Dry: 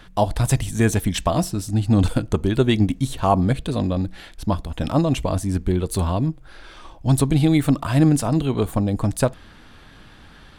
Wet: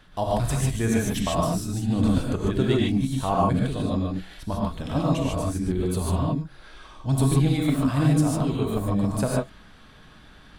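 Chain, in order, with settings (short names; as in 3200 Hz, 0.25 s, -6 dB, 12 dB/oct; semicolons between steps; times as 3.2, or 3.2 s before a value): non-linear reverb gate 0.17 s rising, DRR -3.5 dB; gain -8.5 dB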